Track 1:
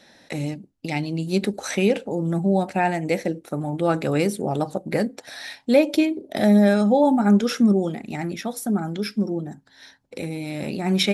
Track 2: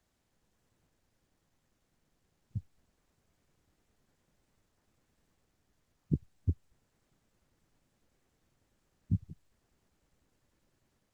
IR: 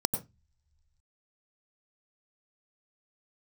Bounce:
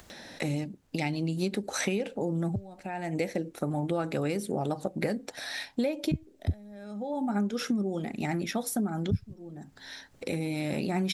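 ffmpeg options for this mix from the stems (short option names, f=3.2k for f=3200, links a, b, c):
-filter_complex "[0:a]acompressor=threshold=-25dB:ratio=12,adelay=100,volume=-0.5dB[a];[1:a]alimiter=limit=-18.5dB:level=0:latency=1:release=122,volume=2dB,asplit=2[b][c];[c]apad=whole_len=495483[d];[a][d]sidechaincompress=threshold=-49dB:ratio=6:attack=16:release=413[e];[e][b]amix=inputs=2:normalize=0,acompressor=mode=upward:threshold=-38dB:ratio=2.5"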